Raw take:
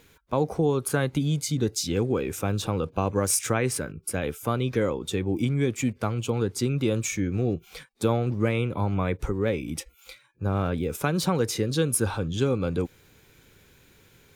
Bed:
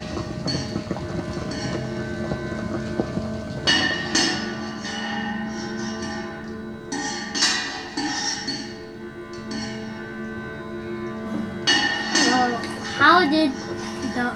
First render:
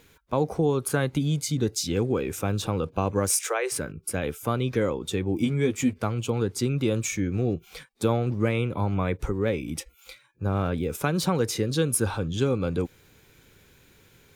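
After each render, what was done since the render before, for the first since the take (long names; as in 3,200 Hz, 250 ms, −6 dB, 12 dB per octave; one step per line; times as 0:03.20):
0:03.29–0:03.72: Butterworth high-pass 370 Hz 72 dB per octave
0:05.40–0:05.99: double-tracking delay 12 ms −4.5 dB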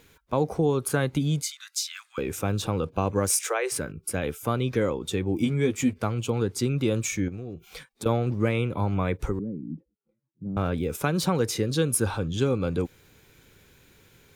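0:01.42–0:02.18: Butterworth high-pass 1,200 Hz 48 dB per octave
0:07.28–0:08.06: downward compressor 12 to 1, threshold −32 dBFS
0:09.39–0:10.57: flat-topped band-pass 200 Hz, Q 1.4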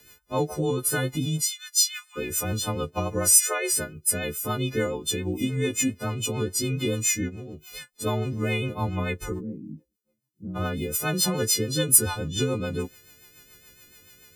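every partial snapped to a pitch grid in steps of 3 semitones
rotating-speaker cabinet horn 7 Hz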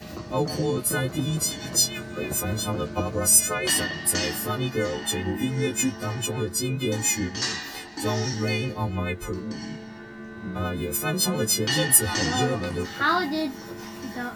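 mix in bed −8 dB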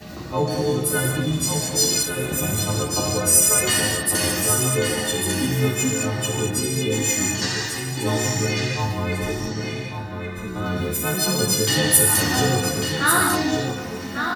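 single-tap delay 1,147 ms −6.5 dB
reverb whose tail is shaped and stops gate 250 ms flat, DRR −1 dB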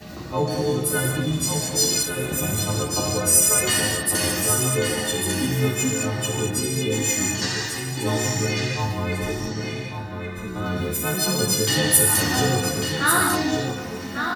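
level −1 dB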